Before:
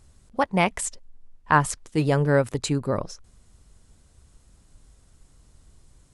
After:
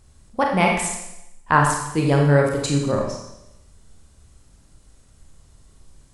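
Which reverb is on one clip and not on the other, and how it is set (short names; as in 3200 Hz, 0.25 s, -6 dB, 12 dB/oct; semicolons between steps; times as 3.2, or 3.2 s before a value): Schroeder reverb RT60 0.87 s, combs from 28 ms, DRR 0 dB; gain +1 dB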